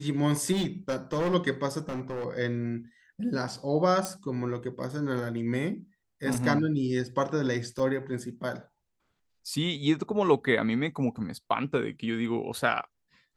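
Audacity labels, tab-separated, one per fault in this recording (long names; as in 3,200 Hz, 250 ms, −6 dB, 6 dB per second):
0.520000	1.350000	clipping −24 dBFS
1.880000	2.260000	clipping −30 dBFS
4.050000	4.050000	click −15 dBFS
6.340000	6.340000	drop-out 3 ms
7.790000	7.790000	drop-out 4.7 ms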